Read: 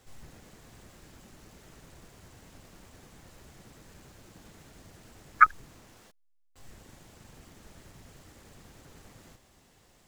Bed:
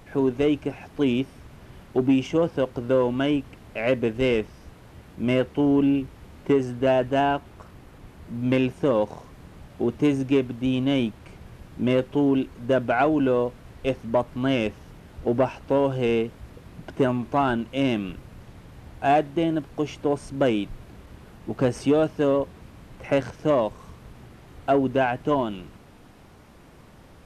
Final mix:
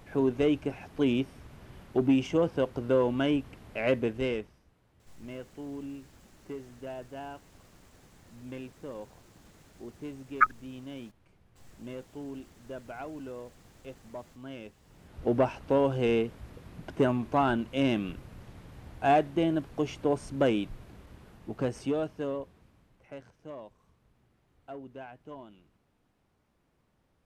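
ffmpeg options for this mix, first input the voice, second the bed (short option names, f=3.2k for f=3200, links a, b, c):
-filter_complex "[0:a]adelay=5000,volume=-4.5dB[a];[1:a]volume=12.5dB,afade=t=out:st=3.93:d=0.71:silence=0.158489,afade=t=in:st=14.82:d=0.44:silence=0.149624,afade=t=out:st=20.34:d=2.72:silence=0.112202[b];[a][b]amix=inputs=2:normalize=0"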